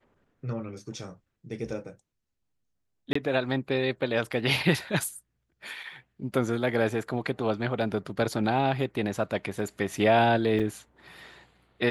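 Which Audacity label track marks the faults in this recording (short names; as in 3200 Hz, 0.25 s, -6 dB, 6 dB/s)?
3.130000	3.150000	gap 24 ms
10.590000	10.600000	gap 6.7 ms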